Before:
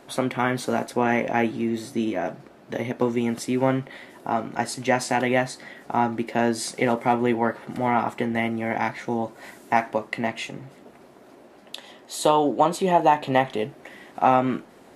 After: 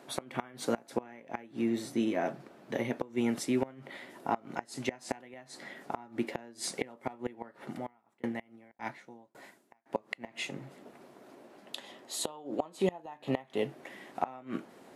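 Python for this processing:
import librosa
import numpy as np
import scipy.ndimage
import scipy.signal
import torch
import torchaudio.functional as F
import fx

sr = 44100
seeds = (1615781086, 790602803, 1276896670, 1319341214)

y = scipy.signal.sosfilt(scipy.signal.butter(2, 120.0, 'highpass', fs=sr, output='sos'), x)
y = fx.gate_flip(y, sr, shuts_db=-12.0, range_db=-24)
y = fx.tremolo_decay(y, sr, direction='decaying', hz=1.8, depth_db=34, at=(7.68, 9.86))
y = y * 10.0 ** (-4.5 / 20.0)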